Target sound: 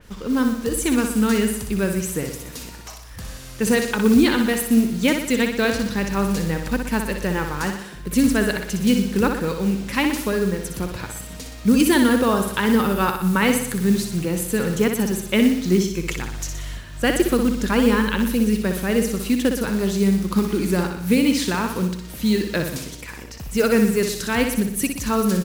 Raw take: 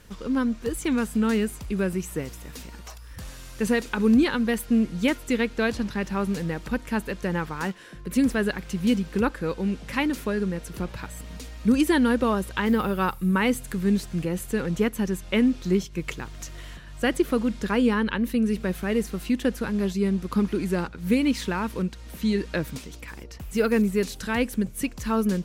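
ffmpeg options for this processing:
-af "acrusher=bits=7:mode=log:mix=0:aa=0.000001,aecho=1:1:61|122|183|244|305|366|427:0.473|0.265|0.148|0.0831|0.0465|0.0261|0.0146,adynamicequalizer=threshold=0.00562:dfrequency=3700:dqfactor=0.7:tfrequency=3700:tqfactor=0.7:attack=5:release=100:ratio=0.375:range=3:mode=boostabove:tftype=highshelf,volume=1.5"

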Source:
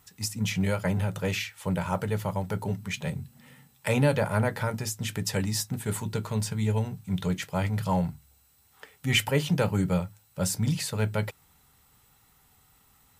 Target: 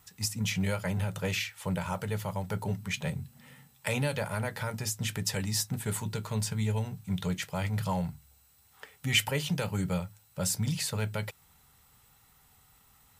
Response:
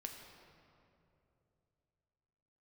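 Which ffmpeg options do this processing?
-filter_complex "[0:a]equalizer=f=310:t=o:w=0.96:g=-4,acrossover=split=2200[s0][s1];[s0]alimiter=limit=0.0794:level=0:latency=1:release=312[s2];[s2][s1]amix=inputs=2:normalize=0"

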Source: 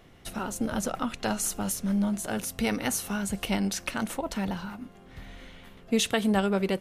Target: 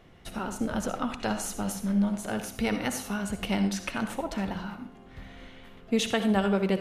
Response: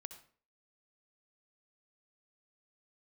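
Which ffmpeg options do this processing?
-filter_complex "[0:a]highshelf=f=6100:g=-8.5[s0];[1:a]atrim=start_sample=2205[s1];[s0][s1]afir=irnorm=-1:irlink=0,volume=1.78"

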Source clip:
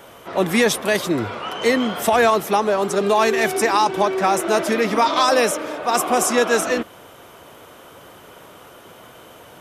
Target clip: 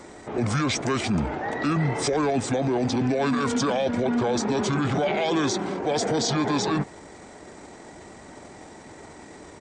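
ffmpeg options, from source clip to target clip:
-af "asetrate=27781,aresample=44100,atempo=1.5874,alimiter=limit=0.15:level=0:latency=1:release=16"

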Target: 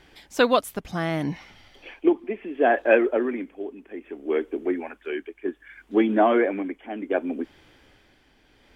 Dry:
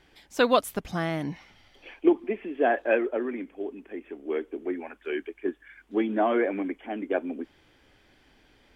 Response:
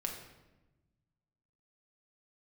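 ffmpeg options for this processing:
-af "tremolo=f=0.66:d=0.52,volume=2"

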